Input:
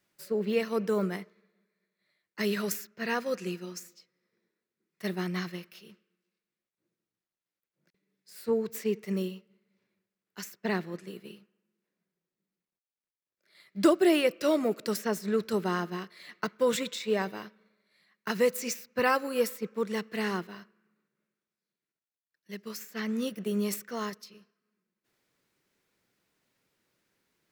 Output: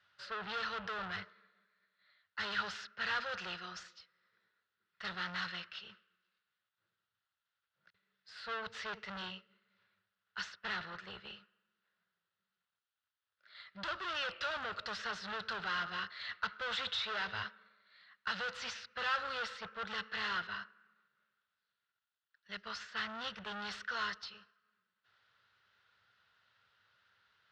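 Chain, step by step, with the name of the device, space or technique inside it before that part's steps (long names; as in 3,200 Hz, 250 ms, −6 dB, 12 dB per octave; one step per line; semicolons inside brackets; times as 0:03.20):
dynamic equaliser 4,600 Hz, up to +4 dB, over −51 dBFS, Q 0.89
scooped metal amplifier (tube saturation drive 40 dB, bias 0.4; loudspeaker in its box 81–3,600 Hz, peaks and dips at 100 Hz +7 dB, 150 Hz −8 dB, 1,400 Hz +9 dB, 2,300 Hz −10 dB; guitar amp tone stack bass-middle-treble 10-0-10)
level +14 dB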